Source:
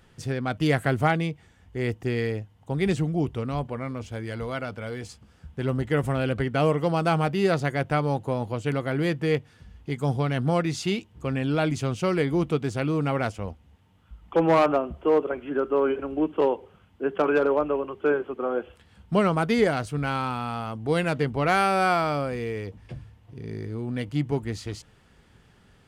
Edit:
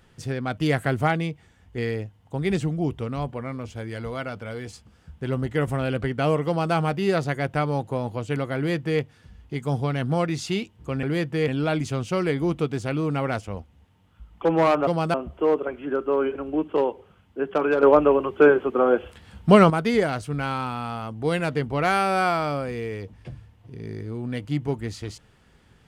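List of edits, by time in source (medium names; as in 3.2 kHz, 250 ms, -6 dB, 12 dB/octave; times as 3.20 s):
1.78–2.14 s: delete
6.83–7.10 s: copy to 14.78 s
8.92–9.37 s: copy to 11.39 s
17.47–19.34 s: gain +8 dB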